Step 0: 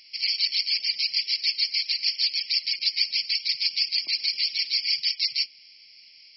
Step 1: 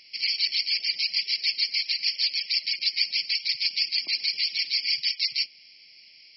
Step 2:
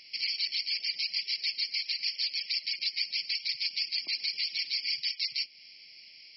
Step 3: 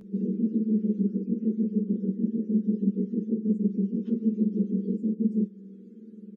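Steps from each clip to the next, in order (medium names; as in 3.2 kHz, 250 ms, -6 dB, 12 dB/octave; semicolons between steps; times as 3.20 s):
treble shelf 3.6 kHz -8 dB; trim +4 dB
compression 2:1, threshold -33 dBFS, peak gain reduction 8 dB
spectrum inverted on a logarithmic axis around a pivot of 1 kHz; endless flanger 11.7 ms -1.1 Hz; trim +3 dB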